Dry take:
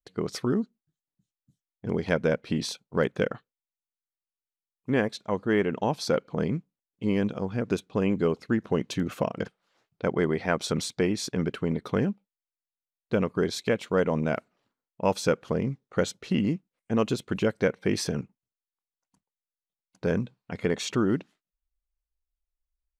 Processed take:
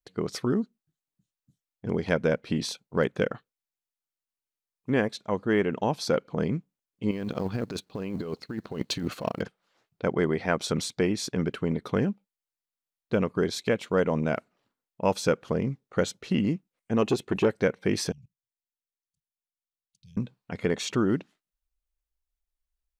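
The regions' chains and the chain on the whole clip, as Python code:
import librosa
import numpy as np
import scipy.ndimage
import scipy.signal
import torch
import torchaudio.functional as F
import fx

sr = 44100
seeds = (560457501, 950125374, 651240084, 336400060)

y = fx.chain(x, sr, fx.law_mismatch(coded='A'),
    fx.peak_eq(hz=4300.0, db=10.5, octaves=0.22),
    fx.over_compress(threshold_db=-31.0, ratio=-1.0), at=(7.11, 9.42))
y = fx.chain(y, sr, fx.small_body(hz=(380.0, 800.0, 1800.0, 2600.0), ring_ms=20, db=7),
    fx.transformer_sat(knee_hz=430.0), at=(17.02, 17.56))
y = fx.chain(y, sr, fx.ellip_bandstop(low_hz=140.0, high_hz=3300.0, order=3, stop_db=40),
    fx.level_steps(step_db=17), at=(18.12, 20.17))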